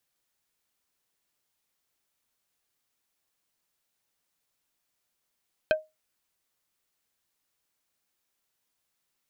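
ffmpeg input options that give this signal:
-f lavfi -i "aevalsrc='0.158*pow(10,-3*t/0.21)*sin(2*PI*624*t)+0.1*pow(10,-3*t/0.07)*sin(2*PI*1560*t)+0.0631*pow(10,-3*t/0.04)*sin(2*PI*2496*t)+0.0398*pow(10,-3*t/0.03)*sin(2*PI*3120*t)+0.0251*pow(10,-3*t/0.022)*sin(2*PI*4056*t)':d=0.45:s=44100"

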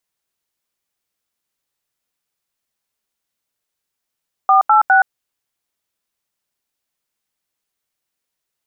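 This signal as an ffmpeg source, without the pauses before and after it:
-f lavfi -i "aevalsrc='0.299*clip(min(mod(t,0.204),0.122-mod(t,0.204))/0.002,0,1)*(eq(floor(t/0.204),0)*(sin(2*PI*770*mod(t,0.204))+sin(2*PI*1209*mod(t,0.204)))+eq(floor(t/0.204),1)*(sin(2*PI*852*mod(t,0.204))+sin(2*PI*1336*mod(t,0.204)))+eq(floor(t/0.204),2)*(sin(2*PI*770*mod(t,0.204))+sin(2*PI*1477*mod(t,0.204))))':d=0.612:s=44100"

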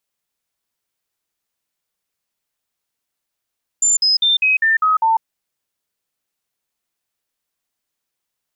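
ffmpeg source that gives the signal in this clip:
-f lavfi -i "aevalsrc='0.266*clip(min(mod(t,0.2),0.15-mod(t,0.2))/0.005,0,1)*sin(2*PI*7170*pow(2,-floor(t/0.2)/2)*mod(t,0.2))':d=1.4:s=44100"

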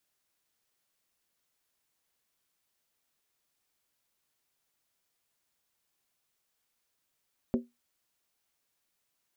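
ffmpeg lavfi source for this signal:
-f lavfi -i "aevalsrc='0.0891*pow(10,-3*t/0.2)*sin(2*PI*240*t)+0.0447*pow(10,-3*t/0.158)*sin(2*PI*382.6*t)+0.0224*pow(10,-3*t/0.137)*sin(2*PI*512.6*t)+0.0112*pow(10,-3*t/0.132)*sin(2*PI*551*t)+0.00562*pow(10,-3*t/0.123)*sin(2*PI*636.7*t)':d=0.63:s=44100"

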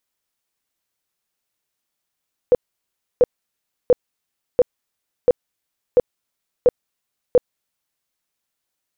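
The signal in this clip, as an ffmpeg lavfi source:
-f lavfi -i "aevalsrc='0.398*sin(2*PI*494*mod(t,0.69))*lt(mod(t,0.69),14/494)':d=5.52:s=44100"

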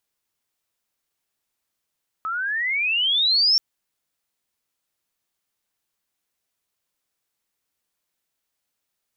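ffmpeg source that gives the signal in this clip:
-f lavfi -i "aevalsrc='pow(10,(-14+10*(t/1.33-1))/20)*sin(2*PI*1270*1.33/(25.5*log(2)/12)*(exp(25.5*log(2)/12*t/1.33)-1))':d=1.33:s=44100"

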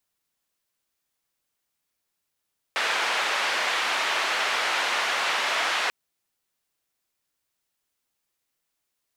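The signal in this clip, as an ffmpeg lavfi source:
-f lavfi -i "anoisesrc=c=white:d=3.14:r=44100:seed=1,highpass=f=690,lowpass=f=2500,volume=-10.3dB"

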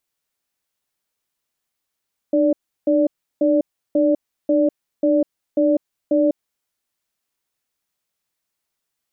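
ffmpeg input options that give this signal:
-f lavfi -i "aevalsrc='0.158*(sin(2*PI*302*t)+sin(2*PI*582*t))*clip(min(mod(t,0.54),0.2-mod(t,0.54))/0.005,0,1)':d=4.06:s=44100"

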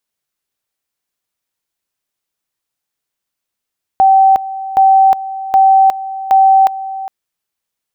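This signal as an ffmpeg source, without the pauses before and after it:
-f lavfi -i "aevalsrc='pow(10,(-4.5-15.5*gte(mod(t,0.77),0.36))/20)*sin(2*PI*772*t)':d=3.08:s=44100"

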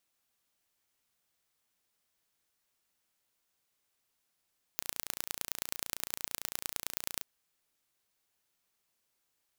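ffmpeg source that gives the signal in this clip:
-f lavfi -i "aevalsrc='0.531*eq(mod(n,1526),0)*(0.5+0.5*eq(mod(n,4578),0))':d=2.45:s=44100"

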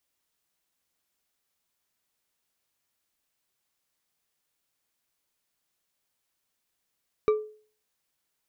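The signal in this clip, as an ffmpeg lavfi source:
-f lavfi -i "aevalsrc='0.158*pow(10,-3*t/0.44)*sin(2*PI*428*t)+0.0501*pow(10,-3*t/0.216)*sin(2*PI*1180*t)+0.0158*pow(10,-3*t/0.135)*sin(2*PI*2312.9*t)+0.00501*pow(10,-3*t/0.095)*sin(2*PI*3823.3*t)+0.00158*pow(10,-3*t/0.072)*sin(2*PI*5709.5*t)':d=0.89:s=44100"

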